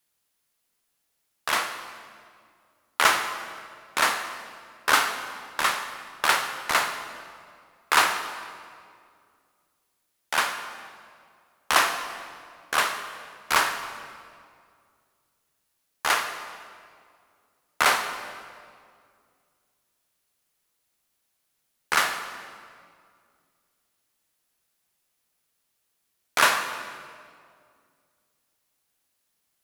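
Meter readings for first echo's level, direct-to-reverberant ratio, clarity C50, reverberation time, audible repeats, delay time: none, 7.0 dB, 8.5 dB, 2.2 s, none, none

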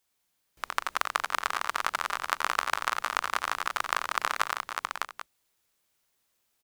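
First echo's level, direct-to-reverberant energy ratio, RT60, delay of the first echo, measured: -8.0 dB, none, none, 88 ms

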